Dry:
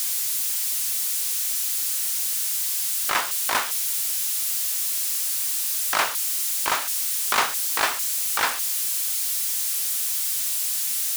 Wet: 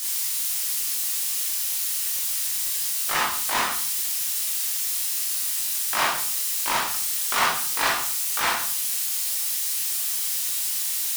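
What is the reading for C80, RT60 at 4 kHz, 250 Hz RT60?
8.0 dB, 0.40 s, 0.65 s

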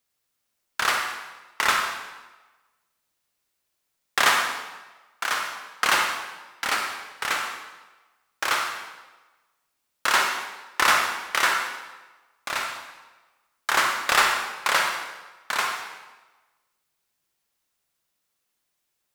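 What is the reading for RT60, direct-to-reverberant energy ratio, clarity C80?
1.2 s, 2.0 dB, 5.5 dB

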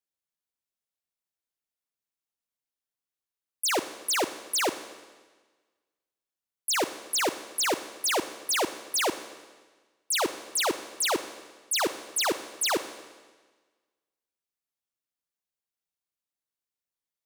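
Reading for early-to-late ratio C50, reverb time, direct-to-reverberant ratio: 11.5 dB, 1.4 s, 11.0 dB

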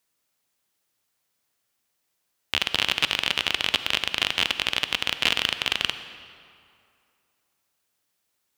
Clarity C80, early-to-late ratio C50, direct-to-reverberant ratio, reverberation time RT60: 11.5 dB, 10.5 dB, 10.5 dB, 2.4 s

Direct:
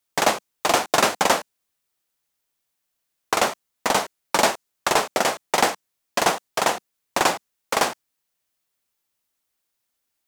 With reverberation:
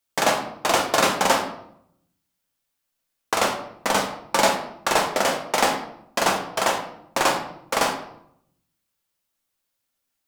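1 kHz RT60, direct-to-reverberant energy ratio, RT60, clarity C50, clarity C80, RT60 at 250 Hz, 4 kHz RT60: 0.70 s, 2.5 dB, 0.70 s, 8.5 dB, 10.5 dB, 0.90 s, 0.50 s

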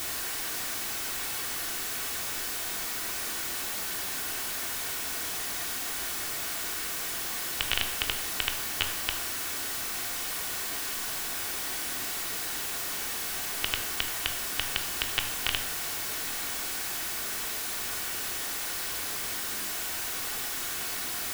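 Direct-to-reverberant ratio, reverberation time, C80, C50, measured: 4.0 dB, 0.85 s, 12.0 dB, 9.5 dB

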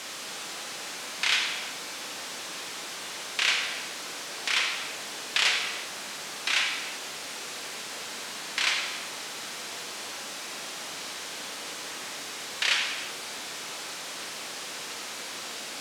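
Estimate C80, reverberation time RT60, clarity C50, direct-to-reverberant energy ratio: 5.0 dB, not exponential, 3.0 dB, 1.5 dB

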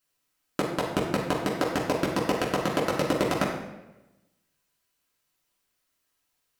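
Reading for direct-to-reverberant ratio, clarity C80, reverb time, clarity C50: -6.0 dB, 6.0 dB, 1.0 s, 3.0 dB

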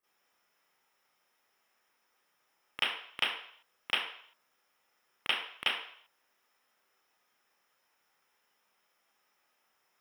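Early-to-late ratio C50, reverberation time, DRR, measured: 0.0 dB, 0.60 s, -15.0 dB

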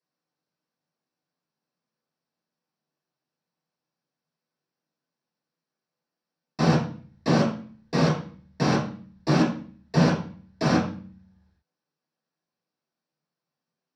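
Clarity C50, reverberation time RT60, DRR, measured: 5.5 dB, 0.45 s, -7.0 dB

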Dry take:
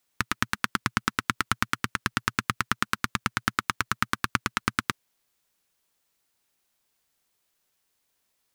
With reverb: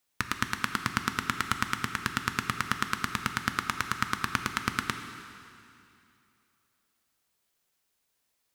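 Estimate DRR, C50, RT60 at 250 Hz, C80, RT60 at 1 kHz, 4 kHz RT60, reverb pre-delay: 7.0 dB, 8.0 dB, 2.8 s, 9.0 dB, 2.7 s, 2.5 s, 4 ms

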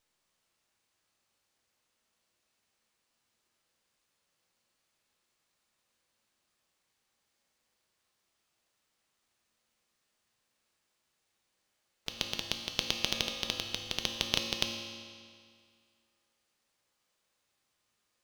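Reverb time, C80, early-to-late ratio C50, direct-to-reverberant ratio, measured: 2.1 s, 5.5 dB, 4.5 dB, 2.5 dB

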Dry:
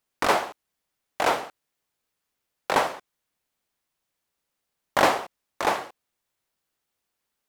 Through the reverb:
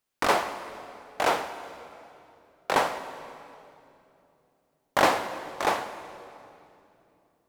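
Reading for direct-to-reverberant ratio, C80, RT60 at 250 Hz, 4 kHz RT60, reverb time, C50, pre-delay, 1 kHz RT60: 9.5 dB, 11.5 dB, 3.8 s, 2.3 s, 2.9 s, 10.5 dB, 21 ms, 2.6 s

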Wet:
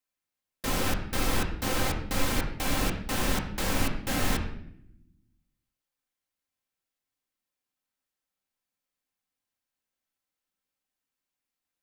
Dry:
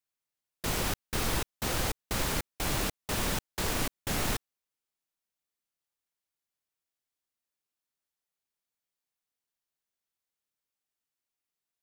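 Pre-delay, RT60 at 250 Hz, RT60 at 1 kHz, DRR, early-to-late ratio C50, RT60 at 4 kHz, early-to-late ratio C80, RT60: 4 ms, 1.4 s, 0.60 s, 0.0 dB, 7.5 dB, 0.60 s, 10.0 dB, 0.75 s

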